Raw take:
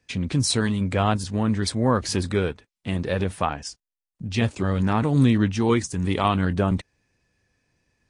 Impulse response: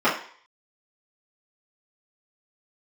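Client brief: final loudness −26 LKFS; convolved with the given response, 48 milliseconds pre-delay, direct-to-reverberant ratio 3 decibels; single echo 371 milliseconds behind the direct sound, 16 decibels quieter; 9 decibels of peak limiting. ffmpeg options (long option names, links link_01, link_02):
-filter_complex "[0:a]alimiter=limit=-16.5dB:level=0:latency=1,aecho=1:1:371:0.158,asplit=2[link_01][link_02];[1:a]atrim=start_sample=2205,adelay=48[link_03];[link_02][link_03]afir=irnorm=-1:irlink=0,volume=-22dB[link_04];[link_01][link_04]amix=inputs=2:normalize=0"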